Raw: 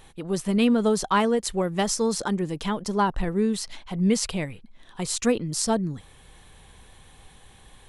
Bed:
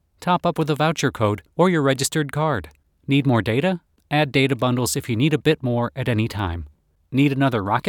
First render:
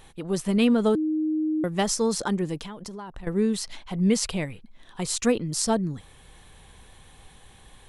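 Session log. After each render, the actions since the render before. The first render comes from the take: 0.95–1.64 bleep 311 Hz -22 dBFS; 2.59–3.27 compressor 16:1, threshold -34 dBFS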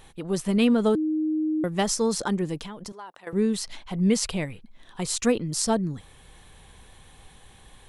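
2.92–3.33 HPF 530 Hz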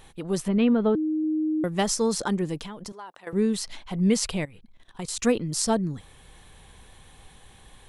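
0.48–1.24 air absorption 340 m; 4.45–5.19 level quantiser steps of 16 dB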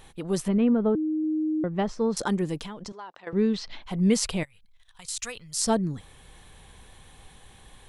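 0.57–2.17 tape spacing loss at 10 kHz 33 dB; 2.73–3.82 LPF 7700 Hz -> 4400 Hz 24 dB/oct; 4.43–5.62 passive tone stack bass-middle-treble 10-0-10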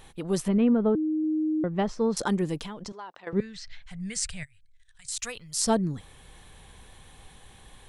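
3.4–5.12 EQ curve 130 Hz 0 dB, 300 Hz -30 dB, 490 Hz -21 dB, 690 Hz -16 dB, 1000 Hz -20 dB, 1700 Hz -1 dB, 3200 Hz -9 dB, 8800 Hz +2 dB, 12000 Hz -21 dB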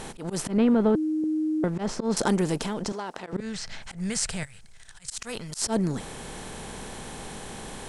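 per-bin compression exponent 0.6; auto swell 0.111 s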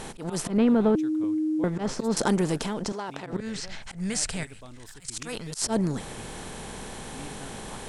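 add bed -27 dB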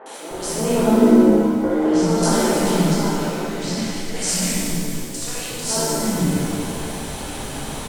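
three bands offset in time mids, highs, lows 60/310 ms, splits 320/1600 Hz; shimmer reverb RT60 2.2 s, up +7 st, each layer -8 dB, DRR -8.5 dB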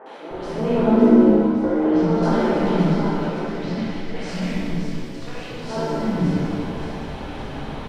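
air absorption 330 m; thin delay 0.561 s, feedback 60%, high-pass 4200 Hz, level -6 dB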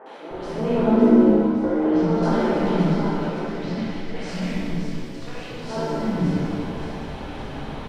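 gain -1.5 dB

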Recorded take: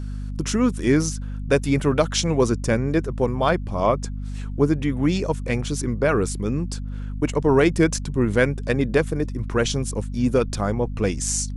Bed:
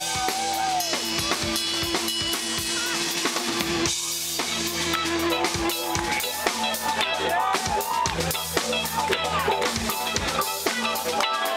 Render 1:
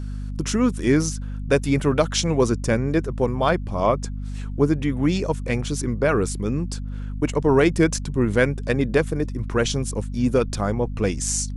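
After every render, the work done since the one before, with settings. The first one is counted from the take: nothing audible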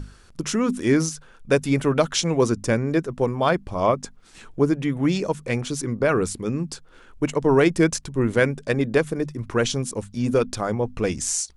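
notches 50/100/150/200/250 Hz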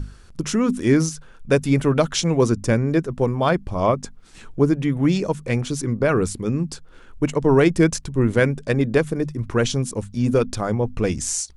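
low shelf 210 Hz +6.5 dB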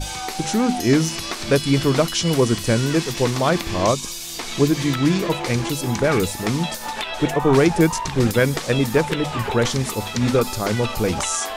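add bed -3.5 dB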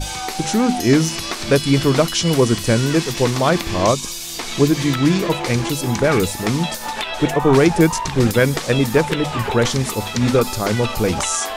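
gain +2.5 dB; limiter -2 dBFS, peak gain reduction 1 dB

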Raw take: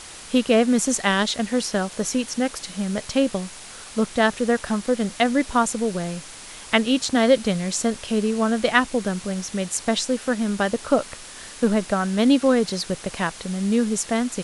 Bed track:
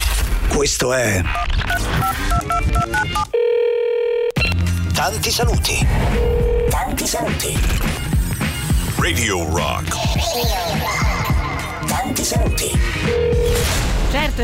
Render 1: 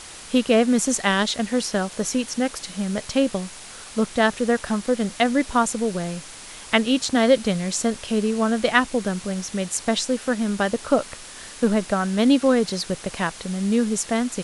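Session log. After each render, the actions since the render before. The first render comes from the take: nothing audible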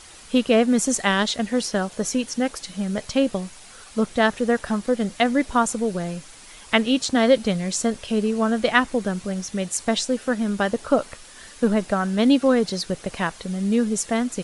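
denoiser 7 dB, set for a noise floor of -40 dBFS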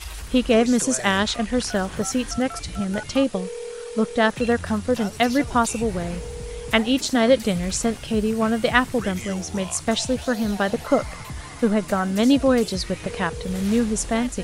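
add bed track -17 dB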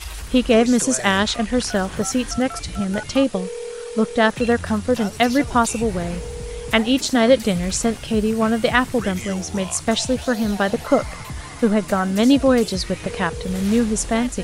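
gain +2.5 dB; limiter -2 dBFS, peak gain reduction 3 dB

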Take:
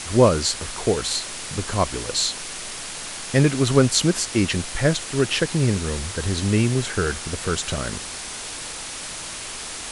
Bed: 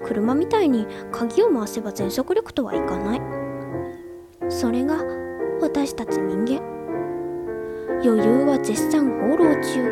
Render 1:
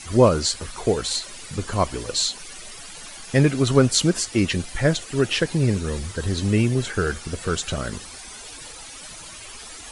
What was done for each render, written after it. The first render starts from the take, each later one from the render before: denoiser 13 dB, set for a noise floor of -34 dBFS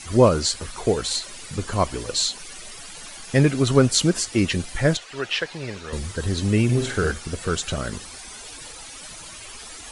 4.97–5.93 three-band isolator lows -15 dB, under 540 Hz, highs -15 dB, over 5600 Hz; 6.64–7.11 flutter echo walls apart 8.4 m, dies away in 0.46 s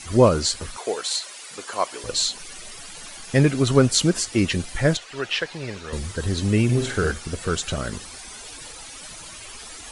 0.77–2.04 HPF 540 Hz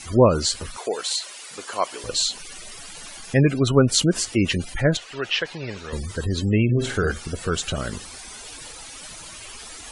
spectral gate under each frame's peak -30 dB strong; dynamic EQ 2900 Hz, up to +3 dB, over -47 dBFS, Q 4.8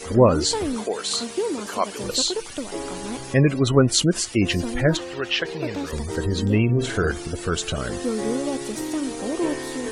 add bed -8 dB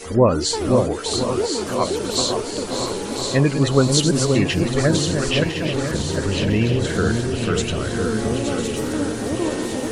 regenerating reverse delay 0.502 s, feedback 72%, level -8 dB; echo with dull and thin repeats by turns 0.529 s, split 1000 Hz, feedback 64%, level -3.5 dB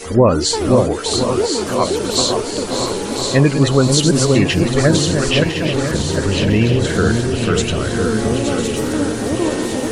gain +4.5 dB; limiter -2 dBFS, peak gain reduction 3 dB

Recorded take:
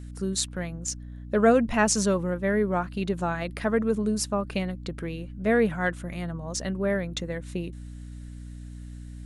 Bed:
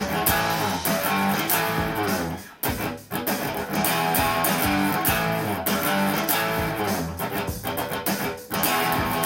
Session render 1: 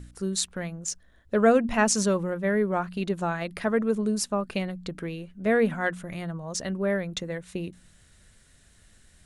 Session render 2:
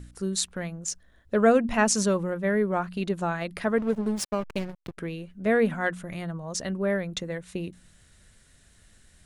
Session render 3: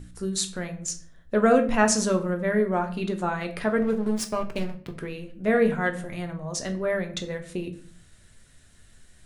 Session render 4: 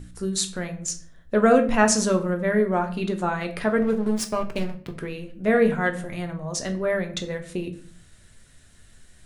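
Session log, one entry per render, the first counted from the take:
de-hum 60 Hz, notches 5
3.78–4.98 backlash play -26.5 dBFS
shoebox room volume 49 m³, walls mixed, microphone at 0.35 m
gain +2 dB

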